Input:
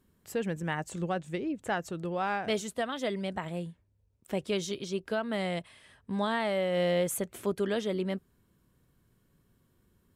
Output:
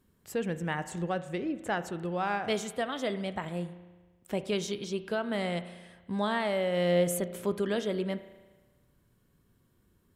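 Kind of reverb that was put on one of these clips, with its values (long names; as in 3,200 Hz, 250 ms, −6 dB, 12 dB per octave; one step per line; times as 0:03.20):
spring reverb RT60 1.3 s, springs 34 ms, chirp 30 ms, DRR 12 dB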